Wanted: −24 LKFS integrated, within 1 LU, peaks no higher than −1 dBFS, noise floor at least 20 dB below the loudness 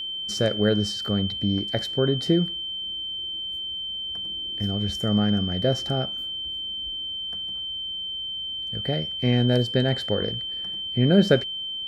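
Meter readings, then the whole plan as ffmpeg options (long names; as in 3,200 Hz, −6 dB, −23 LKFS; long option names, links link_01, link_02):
interfering tone 3,100 Hz; level of the tone −29 dBFS; integrated loudness −25.0 LKFS; sample peak −4.5 dBFS; target loudness −24.0 LKFS
→ -af "bandreject=frequency=3100:width=30"
-af "volume=1dB"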